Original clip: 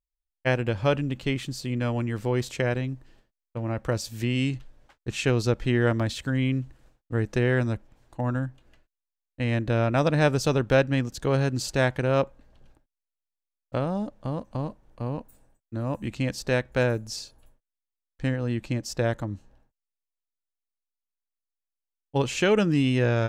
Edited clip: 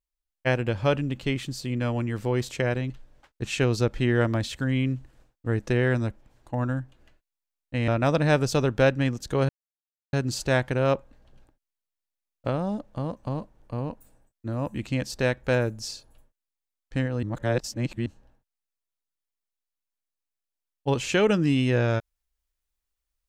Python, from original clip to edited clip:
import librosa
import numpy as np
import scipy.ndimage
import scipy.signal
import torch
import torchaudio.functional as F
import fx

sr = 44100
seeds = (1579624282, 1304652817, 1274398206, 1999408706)

y = fx.edit(x, sr, fx.cut(start_s=2.9, length_s=1.66),
    fx.cut(start_s=9.54, length_s=0.26),
    fx.insert_silence(at_s=11.41, length_s=0.64),
    fx.reverse_span(start_s=18.51, length_s=0.83), tone=tone)